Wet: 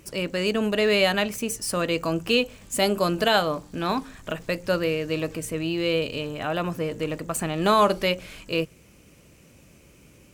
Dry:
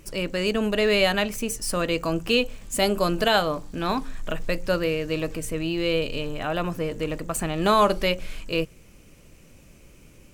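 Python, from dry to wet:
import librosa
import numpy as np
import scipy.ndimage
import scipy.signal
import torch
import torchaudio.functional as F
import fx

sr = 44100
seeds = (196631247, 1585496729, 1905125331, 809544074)

y = scipy.signal.sosfilt(scipy.signal.butter(2, 63.0, 'highpass', fs=sr, output='sos'), x)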